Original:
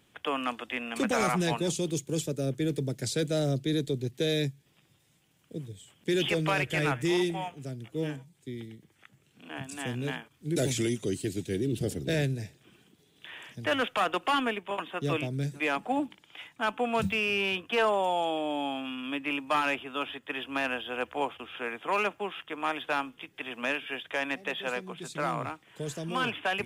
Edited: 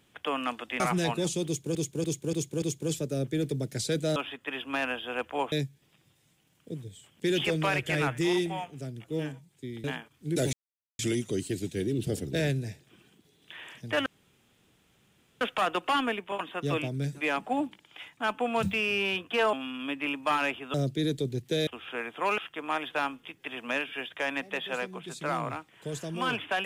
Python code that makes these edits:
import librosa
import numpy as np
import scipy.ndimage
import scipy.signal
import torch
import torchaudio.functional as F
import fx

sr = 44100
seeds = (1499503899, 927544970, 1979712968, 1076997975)

y = fx.edit(x, sr, fx.cut(start_s=0.8, length_s=0.43),
    fx.repeat(start_s=1.89, length_s=0.29, count=5),
    fx.swap(start_s=3.43, length_s=0.93, other_s=19.98, other_length_s=1.36),
    fx.cut(start_s=8.68, length_s=1.36),
    fx.insert_silence(at_s=10.73, length_s=0.46),
    fx.insert_room_tone(at_s=13.8, length_s=1.35),
    fx.cut(start_s=17.92, length_s=0.85),
    fx.cut(start_s=22.05, length_s=0.27), tone=tone)